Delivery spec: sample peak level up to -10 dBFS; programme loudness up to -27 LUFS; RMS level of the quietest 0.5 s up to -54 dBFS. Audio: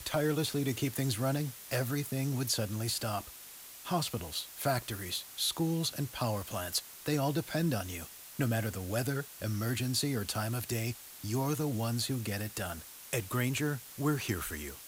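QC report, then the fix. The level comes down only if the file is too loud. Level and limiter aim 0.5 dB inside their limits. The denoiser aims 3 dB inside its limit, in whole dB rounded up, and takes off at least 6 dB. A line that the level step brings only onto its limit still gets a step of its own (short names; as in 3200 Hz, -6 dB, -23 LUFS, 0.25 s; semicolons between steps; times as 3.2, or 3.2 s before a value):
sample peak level -18.0 dBFS: OK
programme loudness -34.0 LUFS: OK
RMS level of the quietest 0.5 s -50 dBFS: fail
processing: denoiser 7 dB, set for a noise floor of -50 dBFS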